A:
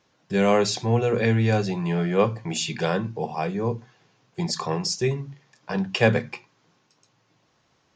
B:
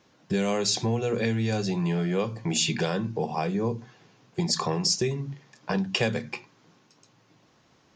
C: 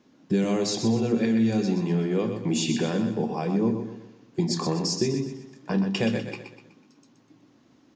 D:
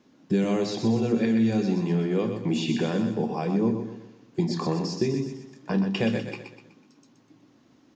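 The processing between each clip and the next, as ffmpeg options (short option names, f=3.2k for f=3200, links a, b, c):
-filter_complex "[0:a]equalizer=f=250:t=o:w=1.4:g=4.5,acrossover=split=3700[a][b];[a]acompressor=threshold=-27dB:ratio=6[c];[c][b]amix=inputs=2:normalize=0,volume=3dB"
-af "equalizer=f=270:t=o:w=0.91:g=14.5,flanger=delay=4.7:depth=9.8:regen=-73:speed=0.29:shape=sinusoidal,aecho=1:1:124|248|372|496|620:0.422|0.173|0.0709|0.0291|0.0119"
-filter_complex "[0:a]acrossover=split=4300[a][b];[b]acompressor=threshold=-48dB:ratio=4:attack=1:release=60[c];[a][c]amix=inputs=2:normalize=0"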